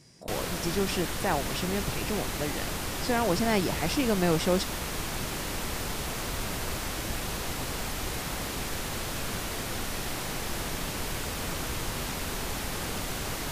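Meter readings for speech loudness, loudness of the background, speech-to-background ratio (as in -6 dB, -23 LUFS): -30.0 LUFS, -33.0 LUFS, 3.0 dB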